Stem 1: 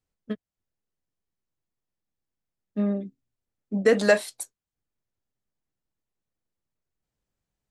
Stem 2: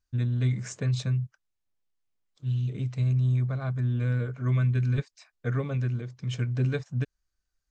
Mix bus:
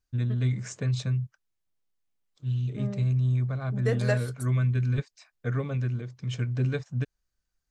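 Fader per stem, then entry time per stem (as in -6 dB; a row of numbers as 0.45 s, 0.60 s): -9.5 dB, -0.5 dB; 0.00 s, 0.00 s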